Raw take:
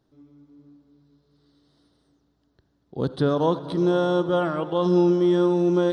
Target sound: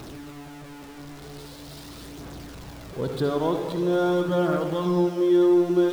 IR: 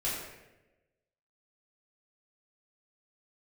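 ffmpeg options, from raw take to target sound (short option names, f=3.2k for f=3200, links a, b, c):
-filter_complex "[0:a]aeval=exprs='val(0)+0.5*0.0251*sgn(val(0))':c=same,asplit=2[a][b];[1:a]atrim=start_sample=2205,adelay=58[c];[b][c]afir=irnorm=-1:irlink=0,volume=-12dB[d];[a][d]amix=inputs=2:normalize=0,aphaser=in_gain=1:out_gain=1:delay=3:decay=0.29:speed=0.44:type=triangular,volume=-4.5dB"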